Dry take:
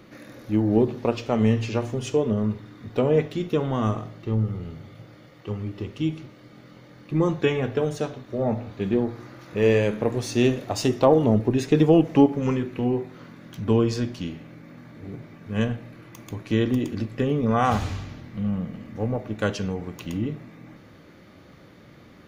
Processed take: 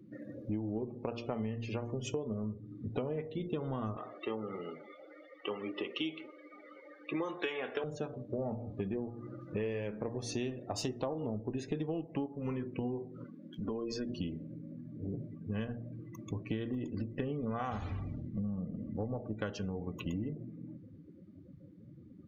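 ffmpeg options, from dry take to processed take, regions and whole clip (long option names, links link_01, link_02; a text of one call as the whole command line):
ffmpeg -i in.wav -filter_complex "[0:a]asettb=1/sr,asplit=3[link_01][link_02][link_03];[link_01]atrim=end=3.974[link_04];[link_02]atrim=start=3.97:end=7.84,asetpts=PTS-STARTPTS,afade=type=in:duration=0.004:curve=qsin,afade=type=out:start_time=3.866:duration=0.004:curve=qsin,aemphasis=mode=production:type=riaa,acontrast=69,highpass=310,lowpass=3500[link_05];[link_03]atrim=start=7.836[link_06];[link_04][link_05]acrossfade=duration=0.004:curve1=hsin:curve2=qsin[link_07];[link_07][link_06]acrossfade=duration=0.004:curve1=qsin:curve2=hsin,asettb=1/sr,asplit=3[link_08][link_09][link_10];[link_08]atrim=end=13.244[link_11];[link_09]atrim=start=13.24:end=14.09,asetpts=PTS-STARTPTS,afade=type=in:duration=0.004:curve=qsin,afade=type=out:start_time=0.846:duration=0.004:curve=qsin,equalizer=frequency=110:width_type=o:width=0.93:gain=-15,acompressor=threshold=-31dB:ratio=3:attack=3.2:release=140:knee=1:detection=peak[link_12];[link_10]atrim=start=14.086[link_13];[link_11][link_12]acrossfade=duration=0.004:curve1=hsin:curve2=qsin[link_14];[link_14][link_13]acrossfade=duration=0.004:curve1=qsin:curve2=hsin,bandreject=frequency=117.8:width_type=h:width=4,bandreject=frequency=235.6:width_type=h:width=4,bandreject=frequency=353.4:width_type=h:width=4,bandreject=frequency=471.2:width_type=h:width=4,bandreject=frequency=589:width_type=h:width=4,bandreject=frequency=706.8:width_type=h:width=4,bandreject=frequency=824.6:width_type=h:width=4,bandreject=frequency=942.4:width_type=h:width=4,bandreject=frequency=1060.2:width_type=h:width=4,bandreject=frequency=1178:width_type=h:width=4,bandreject=frequency=1295.8:width_type=h:width=4,bandreject=frequency=1413.6:width_type=h:width=4,afftdn=noise_reduction=30:noise_floor=-40,acompressor=threshold=-33dB:ratio=12" out.wav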